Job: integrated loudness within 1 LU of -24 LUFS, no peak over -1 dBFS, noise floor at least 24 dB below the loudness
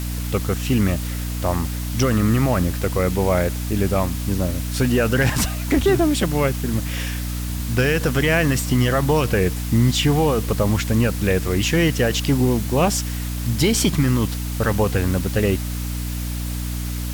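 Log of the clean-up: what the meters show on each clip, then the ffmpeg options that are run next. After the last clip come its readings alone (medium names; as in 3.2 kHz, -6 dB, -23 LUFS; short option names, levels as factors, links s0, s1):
hum 60 Hz; highest harmonic 300 Hz; hum level -23 dBFS; noise floor -26 dBFS; noise floor target -45 dBFS; loudness -20.5 LUFS; peak level -6.5 dBFS; loudness target -24.0 LUFS
-> -af "bandreject=f=60:t=h:w=4,bandreject=f=120:t=h:w=4,bandreject=f=180:t=h:w=4,bandreject=f=240:t=h:w=4,bandreject=f=300:t=h:w=4"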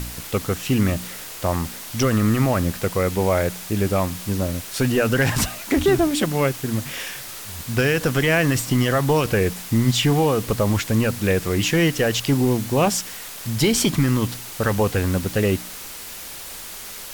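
hum not found; noise floor -36 dBFS; noise floor target -45 dBFS
-> -af "afftdn=nr=9:nf=-36"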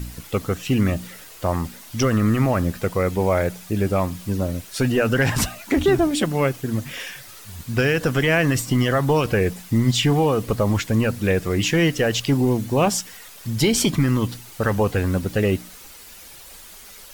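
noise floor -43 dBFS; noise floor target -46 dBFS
-> -af "afftdn=nr=6:nf=-43"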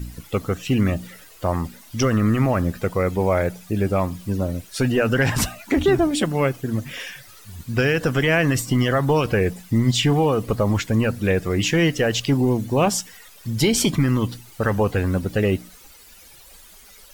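noise floor -47 dBFS; loudness -21.5 LUFS; peak level -7.5 dBFS; loudness target -24.0 LUFS
-> -af "volume=0.75"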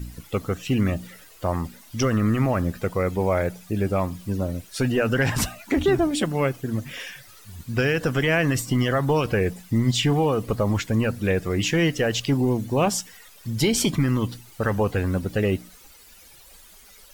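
loudness -24.0 LUFS; peak level -10.0 dBFS; noise floor -49 dBFS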